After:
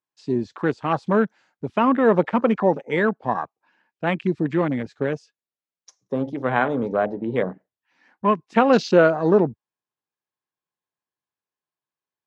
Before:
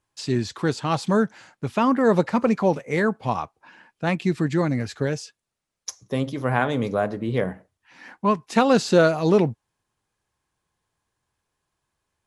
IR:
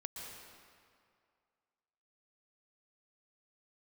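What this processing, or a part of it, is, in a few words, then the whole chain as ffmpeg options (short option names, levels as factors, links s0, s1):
over-cleaned archive recording: -af "highpass=190,lowpass=6100,afwtdn=0.0224,volume=1.26"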